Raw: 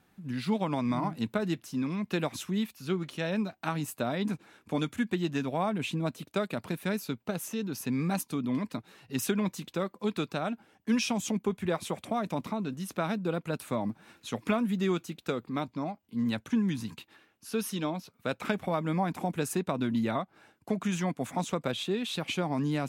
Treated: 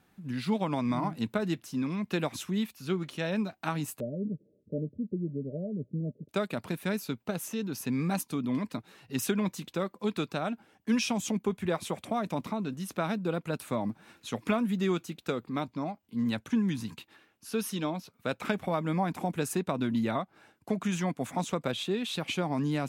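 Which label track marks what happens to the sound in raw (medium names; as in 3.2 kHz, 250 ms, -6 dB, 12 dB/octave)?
4.000000	6.290000	rippled Chebyshev low-pass 610 Hz, ripple 6 dB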